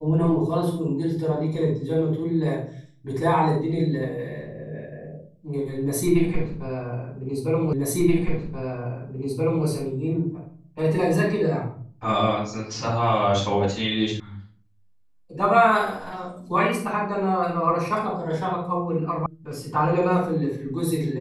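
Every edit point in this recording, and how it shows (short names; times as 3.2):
7.73 repeat of the last 1.93 s
14.2 sound cut off
19.26 sound cut off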